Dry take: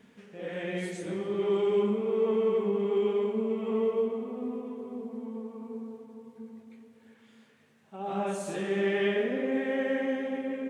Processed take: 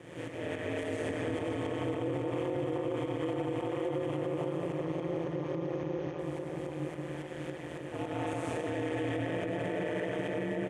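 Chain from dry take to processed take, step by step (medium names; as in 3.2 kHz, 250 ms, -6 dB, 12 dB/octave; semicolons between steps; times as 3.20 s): spectral levelling over time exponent 0.4; 4.72–6.19 s: brick-wall FIR low-pass 6.7 kHz; feedback delay 526 ms, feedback 40%, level -8 dB; tremolo saw up 3.6 Hz, depth 75%; algorithmic reverb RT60 3.9 s, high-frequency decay 0.3×, pre-delay 55 ms, DRR 0 dB; ring modulator 81 Hz; peak limiter -21.5 dBFS, peak gain reduction 10 dB; trim -3 dB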